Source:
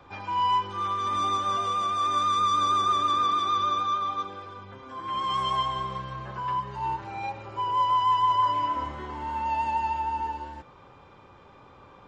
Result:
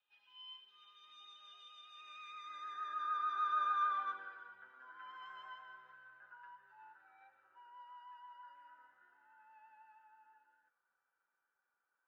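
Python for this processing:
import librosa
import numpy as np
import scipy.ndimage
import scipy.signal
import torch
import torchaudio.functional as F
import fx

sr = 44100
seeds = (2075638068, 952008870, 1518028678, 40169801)

y = fx.doppler_pass(x, sr, speed_mps=10, closest_m=3.4, pass_at_s=3.95)
y = fx.notch_comb(y, sr, f0_hz=1100.0)
y = fx.filter_sweep_bandpass(y, sr, from_hz=3100.0, to_hz=1500.0, start_s=1.84, end_s=3.06, q=7.0)
y = y * 10.0 ** (7.5 / 20.0)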